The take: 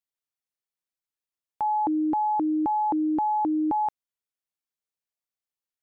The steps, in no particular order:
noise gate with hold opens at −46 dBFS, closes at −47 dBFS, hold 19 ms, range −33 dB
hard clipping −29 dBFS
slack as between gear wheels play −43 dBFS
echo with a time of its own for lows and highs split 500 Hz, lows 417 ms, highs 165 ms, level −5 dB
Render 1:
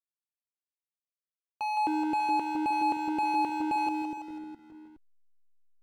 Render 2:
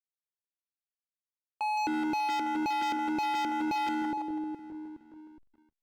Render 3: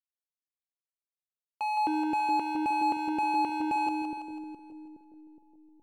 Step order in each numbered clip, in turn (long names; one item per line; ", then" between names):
hard clipping, then echo with a time of its own for lows and highs, then noise gate with hold, then slack as between gear wheels
noise gate with hold, then echo with a time of its own for lows and highs, then slack as between gear wheels, then hard clipping
noise gate with hold, then slack as between gear wheels, then hard clipping, then echo with a time of its own for lows and highs